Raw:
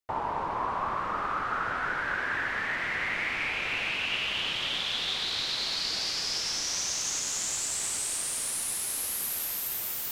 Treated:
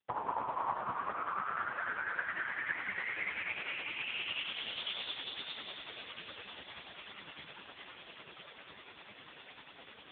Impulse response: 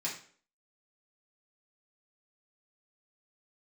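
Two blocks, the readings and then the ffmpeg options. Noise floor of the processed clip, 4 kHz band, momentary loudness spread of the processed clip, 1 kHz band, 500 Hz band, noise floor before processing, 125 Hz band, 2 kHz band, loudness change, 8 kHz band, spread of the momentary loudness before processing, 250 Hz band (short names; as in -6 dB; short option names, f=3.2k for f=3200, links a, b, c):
-56 dBFS, -12.0 dB, 16 LU, -6.5 dB, -8.0 dB, -33 dBFS, -12.0 dB, -7.5 dB, -9.0 dB, under -40 dB, 2 LU, -10.0 dB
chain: -af "afftfilt=real='hypot(re,im)*cos(2*PI*random(0))':imag='hypot(re,im)*sin(2*PI*random(1))':win_size=512:overlap=0.75,tremolo=f=10:d=0.51,volume=5.5dB" -ar 8000 -c:a libopencore_amrnb -b:a 5150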